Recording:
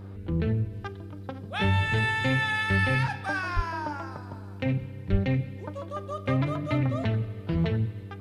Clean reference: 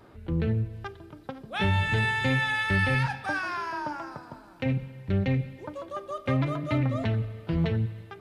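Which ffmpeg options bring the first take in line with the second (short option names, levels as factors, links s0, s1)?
-filter_complex "[0:a]bandreject=f=97.9:t=h:w=4,bandreject=f=195.8:t=h:w=4,bandreject=f=293.7:t=h:w=4,bandreject=f=391.6:t=h:w=4,bandreject=f=489.5:t=h:w=4,asplit=3[s0][s1][s2];[s0]afade=t=out:st=3.55:d=0.02[s3];[s1]highpass=f=140:w=0.5412,highpass=f=140:w=1.3066,afade=t=in:st=3.55:d=0.02,afade=t=out:st=3.67:d=0.02[s4];[s2]afade=t=in:st=3.67:d=0.02[s5];[s3][s4][s5]amix=inputs=3:normalize=0,asplit=3[s6][s7][s8];[s6]afade=t=out:st=5.11:d=0.02[s9];[s7]highpass=f=140:w=0.5412,highpass=f=140:w=1.3066,afade=t=in:st=5.11:d=0.02,afade=t=out:st=5.23:d=0.02[s10];[s8]afade=t=in:st=5.23:d=0.02[s11];[s9][s10][s11]amix=inputs=3:normalize=0"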